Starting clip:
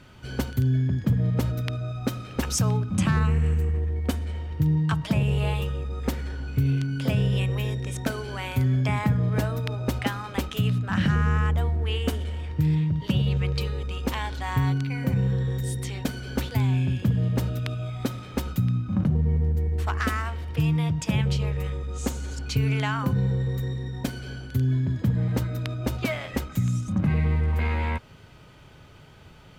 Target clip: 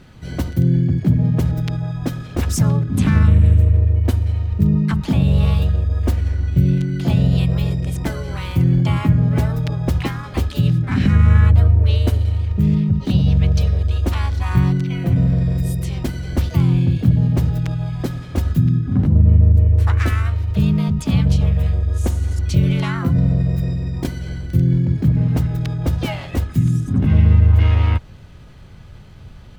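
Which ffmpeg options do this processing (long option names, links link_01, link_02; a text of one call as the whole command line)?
ffmpeg -i in.wav -filter_complex "[0:a]lowshelf=frequency=280:gain=7.5,asplit=2[link_01][link_02];[link_02]asetrate=58866,aresample=44100,atempo=0.749154,volume=-2dB[link_03];[link_01][link_03]amix=inputs=2:normalize=0,asubboost=boost=2:cutoff=110,volume=-1dB" out.wav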